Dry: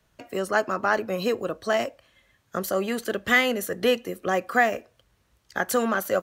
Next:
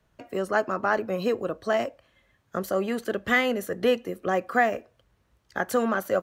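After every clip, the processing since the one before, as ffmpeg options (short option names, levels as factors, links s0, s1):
-af "highshelf=f=2400:g=-8"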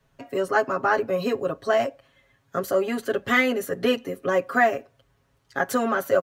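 -af "aecho=1:1:7.3:0.99"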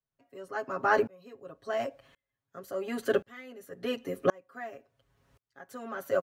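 -af "aeval=exprs='val(0)*pow(10,-34*if(lt(mod(-0.93*n/s,1),2*abs(-0.93)/1000),1-mod(-0.93*n/s,1)/(2*abs(-0.93)/1000),(mod(-0.93*n/s,1)-2*abs(-0.93)/1000)/(1-2*abs(-0.93)/1000))/20)':c=same,volume=1.26"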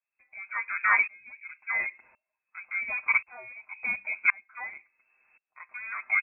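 -af "lowpass=f=2300:t=q:w=0.5098,lowpass=f=2300:t=q:w=0.6013,lowpass=f=2300:t=q:w=0.9,lowpass=f=2300:t=q:w=2.563,afreqshift=-2700,volume=1.26"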